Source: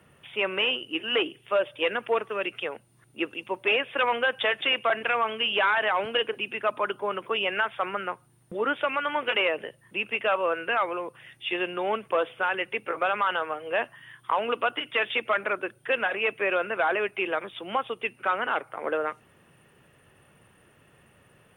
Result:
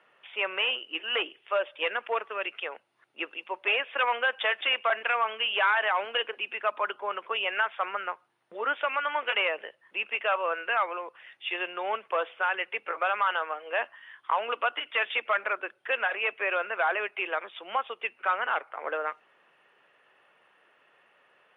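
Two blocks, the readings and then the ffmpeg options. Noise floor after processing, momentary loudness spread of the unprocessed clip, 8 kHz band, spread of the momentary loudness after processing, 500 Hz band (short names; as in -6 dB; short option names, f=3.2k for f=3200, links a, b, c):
-66 dBFS, 8 LU, n/a, 9 LU, -5.0 dB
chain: -af "highpass=640,lowpass=3.3k"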